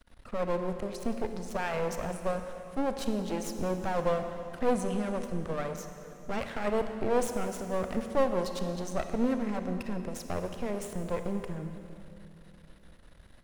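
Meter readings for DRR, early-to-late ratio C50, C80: 7.0 dB, 7.5 dB, 8.5 dB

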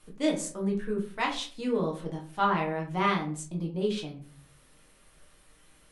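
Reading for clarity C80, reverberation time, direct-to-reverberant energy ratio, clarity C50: 14.5 dB, 0.45 s, −1.0 dB, 9.0 dB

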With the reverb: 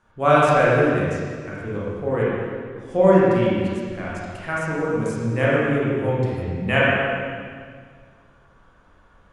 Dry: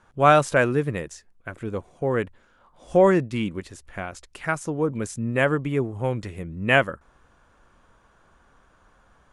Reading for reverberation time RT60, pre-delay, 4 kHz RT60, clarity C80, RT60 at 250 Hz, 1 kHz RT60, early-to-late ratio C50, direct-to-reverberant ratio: 1.9 s, 23 ms, 1.8 s, −1.0 dB, 2.1 s, 1.8 s, −3.5 dB, −7.5 dB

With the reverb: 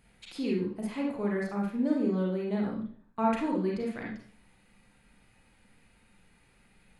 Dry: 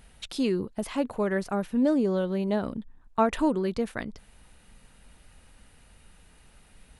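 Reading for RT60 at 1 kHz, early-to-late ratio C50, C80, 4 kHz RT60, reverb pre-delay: 0.50 s, 2.0 dB, 7.5 dB, 0.50 s, 34 ms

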